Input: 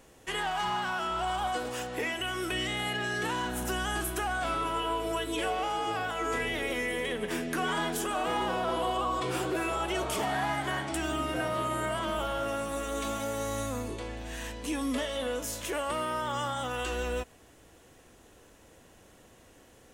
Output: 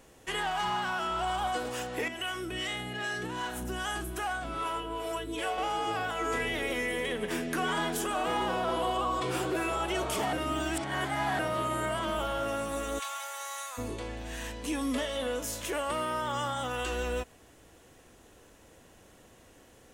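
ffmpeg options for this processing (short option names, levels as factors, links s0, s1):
-filter_complex "[0:a]asettb=1/sr,asplit=3[s0][s1][s2];[s0]atrim=end=2.084[s3];[s1]atrim=start=2.08:end=5.58,asetpts=PTS-STARTPTS,afade=t=in:d=0.004:c=qsin,afade=t=out:st=3.496:d=0.004:c=qsin,acrossover=split=430[s4][s5];[s4]aeval=exprs='val(0)*(1-0.7/2+0.7/2*cos(2*PI*2.5*n/s))':c=same[s6];[s5]aeval=exprs='val(0)*(1-0.7/2-0.7/2*cos(2*PI*2.5*n/s))':c=same[s7];[s6][s7]amix=inputs=2:normalize=0[s8];[s2]atrim=start=5.576[s9];[s3][s8]acrossfade=d=0.004:c1=hsin:c2=qsin[s10];[s10][s9]acrossfade=d=0.004:c1=qsin:c2=hsin,asplit=3[s11][s12][s13];[s11]afade=t=out:st=12.98:d=0.02[s14];[s12]highpass=f=850:w=0.5412,highpass=f=850:w=1.3066,afade=t=in:st=12.98:d=0.02,afade=t=out:st=13.77:d=0.02[s15];[s13]afade=t=in:st=13.77:d=0.02[s16];[s14][s15][s16]amix=inputs=3:normalize=0,asplit=3[s17][s18][s19];[s17]atrim=end=10.332[s20];[s18]atrim=start=10.328:end=11.392,asetpts=PTS-STARTPTS,areverse[s21];[s19]atrim=start=11.388[s22];[s20][s21]acrossfade=d=0.004:c1=hsin:c2=hsin[s23];[s23][s22]acrossfade=d=0.004:c1=hsin:c2=hsin"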